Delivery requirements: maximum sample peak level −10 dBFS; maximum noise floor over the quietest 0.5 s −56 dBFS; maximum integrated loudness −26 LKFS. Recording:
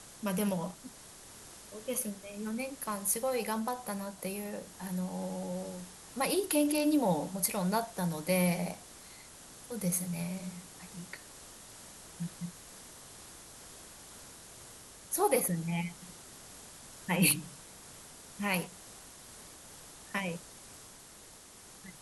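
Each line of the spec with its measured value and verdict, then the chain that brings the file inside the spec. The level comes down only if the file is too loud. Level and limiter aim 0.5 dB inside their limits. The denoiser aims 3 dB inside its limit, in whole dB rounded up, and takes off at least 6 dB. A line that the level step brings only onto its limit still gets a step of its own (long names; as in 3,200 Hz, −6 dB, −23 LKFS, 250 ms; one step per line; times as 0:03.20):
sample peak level −13.0 dBFS: in spec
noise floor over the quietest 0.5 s −53 dBFS: out of spec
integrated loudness −33.5 LKFS: in spec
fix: broadband denoise 6 dB, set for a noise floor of −53 dBFS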